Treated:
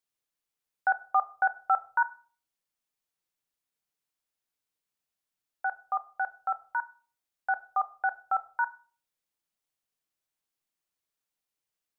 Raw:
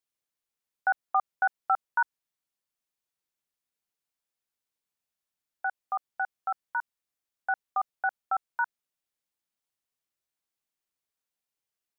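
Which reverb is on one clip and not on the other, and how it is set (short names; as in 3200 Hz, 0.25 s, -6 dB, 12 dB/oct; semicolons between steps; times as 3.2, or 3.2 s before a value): shoebox room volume 360 m³, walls furnished, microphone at 0.48 m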